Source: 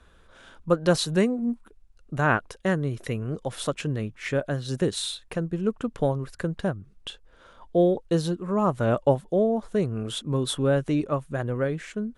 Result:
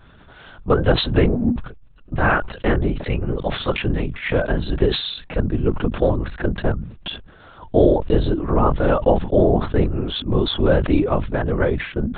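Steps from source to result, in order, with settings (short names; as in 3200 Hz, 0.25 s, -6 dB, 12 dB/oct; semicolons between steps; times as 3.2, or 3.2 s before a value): in parallel at +2.5 dB: limiter -16 dBFS, peak gain reduction 8 dB; on the sum: LPC vocoder at 8 kHz whisper; sustainer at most 91 dB/s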